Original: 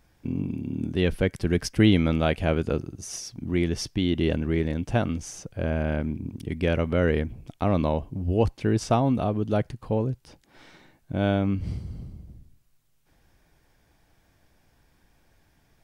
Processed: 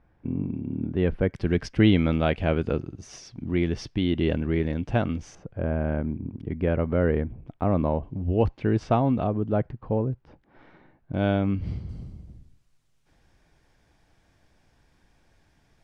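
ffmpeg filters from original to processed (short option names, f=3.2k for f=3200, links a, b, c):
-af "asetnsamples=n=441:p=0,asendcmd='1.34 lowpass f 3600;5.35 lowpass f 1500;8.03 lowpass f 2700;9.27 lowpass f 1600;11.14 lowpass f 3900;11.89 lowpass f 8200',lowpass=1.6k"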